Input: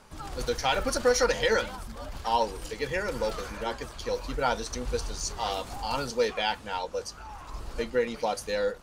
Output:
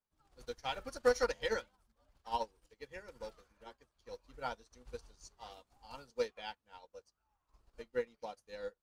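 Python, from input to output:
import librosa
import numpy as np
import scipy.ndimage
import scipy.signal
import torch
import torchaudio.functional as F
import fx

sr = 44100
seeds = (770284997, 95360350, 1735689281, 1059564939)

y = fx.upward_expand(x, sr, threshold_db=-43.0, expansion=2.5)
y = y * librosa.db_to_amplitude(-4.5)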